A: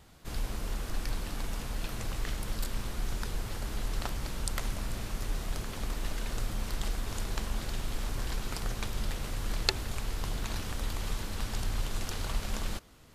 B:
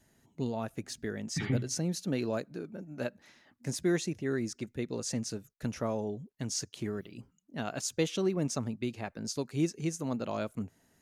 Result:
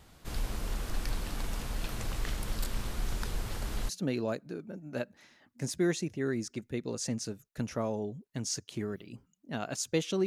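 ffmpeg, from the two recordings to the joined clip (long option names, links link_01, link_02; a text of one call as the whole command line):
ffmpeg -i cue0.wav -i cue1.wav -filter_complex "[0:a]apad=whole_dur=10.26,atrim=end=10.26,atrim=end=3.892[link_01];[1:a]atrim=start=1.938:end=8.31[link_02];[link_01][link_02]acrossfade=duration=0.004:curve1=hsin:curve2=hsin" out.wav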